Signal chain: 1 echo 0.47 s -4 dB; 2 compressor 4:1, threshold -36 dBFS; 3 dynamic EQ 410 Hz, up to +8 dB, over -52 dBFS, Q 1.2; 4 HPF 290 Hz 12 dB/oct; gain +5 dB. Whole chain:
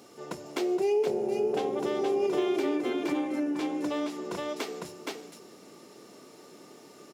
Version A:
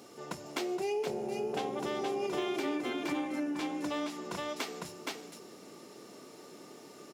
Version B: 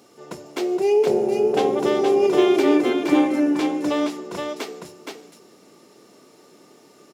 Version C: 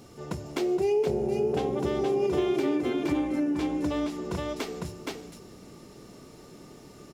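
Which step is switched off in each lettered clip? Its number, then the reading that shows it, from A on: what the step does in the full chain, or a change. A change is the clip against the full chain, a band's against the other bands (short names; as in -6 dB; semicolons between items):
3, 500 Hz band -6.5 dB; 2, mean gain reduction 5.0 dB; 4, momentary loudness spread change +2 LU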